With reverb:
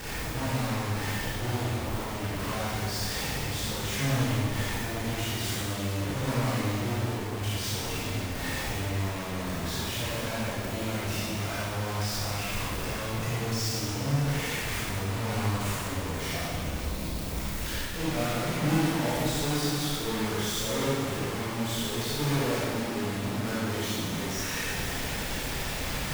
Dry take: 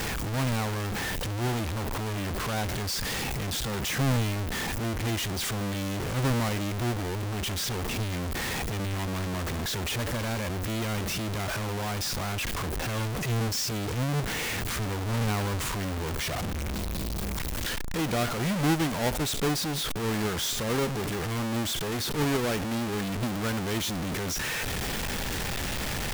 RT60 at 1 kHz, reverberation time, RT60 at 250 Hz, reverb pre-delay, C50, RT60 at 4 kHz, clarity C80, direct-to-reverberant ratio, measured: 1.9 s, 1.9 s, 1.9 s, 23 ms, -4.0 dB, 1.8 s, -1.5 dB, -8.5 dB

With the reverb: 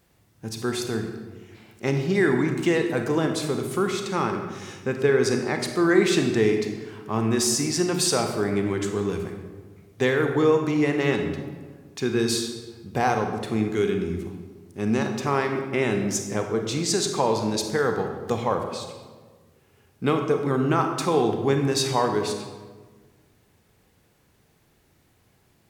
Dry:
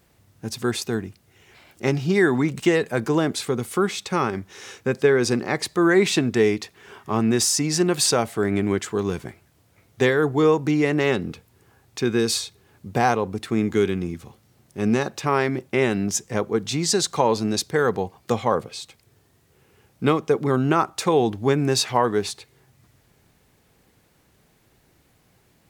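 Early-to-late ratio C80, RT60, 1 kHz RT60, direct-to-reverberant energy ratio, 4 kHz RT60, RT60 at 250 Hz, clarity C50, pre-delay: 7.5 dB, 1.4 s, 1.3 s, 4.5 dB, 0.90 s, 1.8 s, 6.0 dB, 29 ms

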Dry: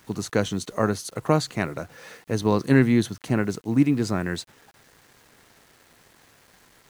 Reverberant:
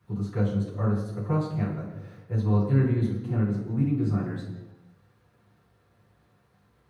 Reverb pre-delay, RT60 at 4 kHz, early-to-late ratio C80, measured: 3 ms, 0.95 s, 6.5 dB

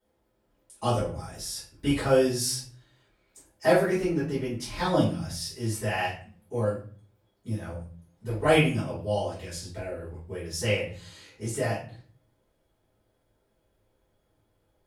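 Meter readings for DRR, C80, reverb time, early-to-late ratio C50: -12.0 dB, 11.0 dB, 0.40 s, 5.0 dB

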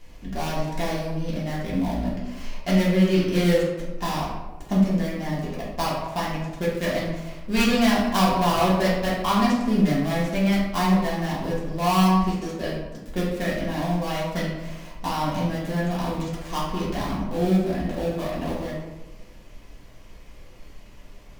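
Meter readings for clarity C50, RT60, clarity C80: 1.0 dB, 1.1 s, 4.0 dB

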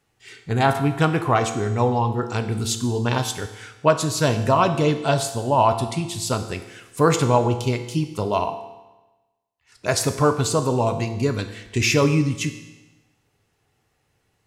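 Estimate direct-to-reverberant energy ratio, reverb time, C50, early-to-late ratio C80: 7.5 dB, 1.1 s, 10.5 dB, 12.0 dB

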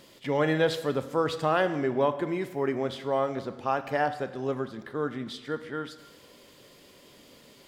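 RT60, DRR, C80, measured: 1.1 s, 10.0 dB, 14.0 dB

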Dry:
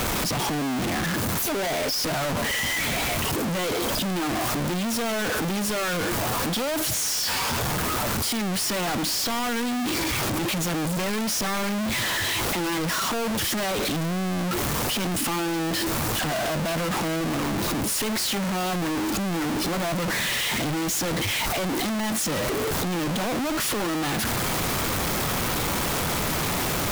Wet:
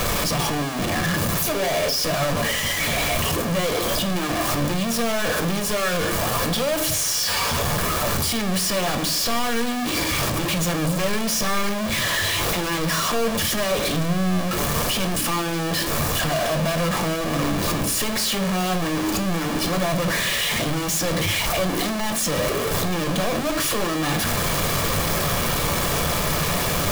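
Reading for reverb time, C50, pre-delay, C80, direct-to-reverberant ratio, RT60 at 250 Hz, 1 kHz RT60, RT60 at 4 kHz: 0.50 s, 14.5 dB, 4 ms, 19.0 dB, 7.0 dB, 0.60 s, 0.40 s, 0.45 s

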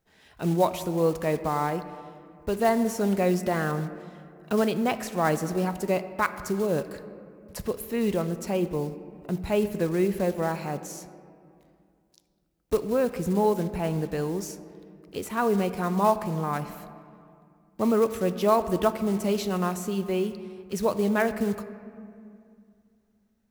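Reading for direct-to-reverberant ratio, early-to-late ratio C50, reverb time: 11.0 dB, 12.5 dB, 2.4 s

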